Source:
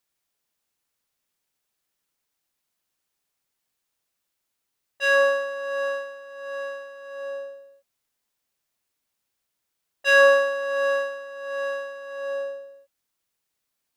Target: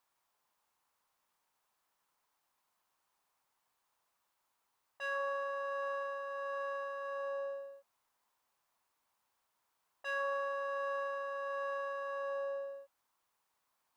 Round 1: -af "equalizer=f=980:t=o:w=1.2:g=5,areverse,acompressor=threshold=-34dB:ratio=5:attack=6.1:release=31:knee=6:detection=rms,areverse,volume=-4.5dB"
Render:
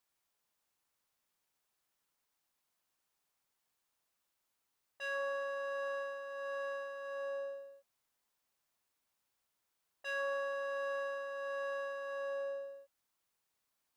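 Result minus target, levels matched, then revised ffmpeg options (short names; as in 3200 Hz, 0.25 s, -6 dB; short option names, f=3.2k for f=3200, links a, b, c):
1000 Hz band -4.0 dB
-af "equalizer=f=980:t=o:w=1.2:g=15.5,areverse,acompressor=threshold=-34dB:ratio=5:attack=6.1:release=31:knee=6:detection=rms,areverse,volume=-4.5dB"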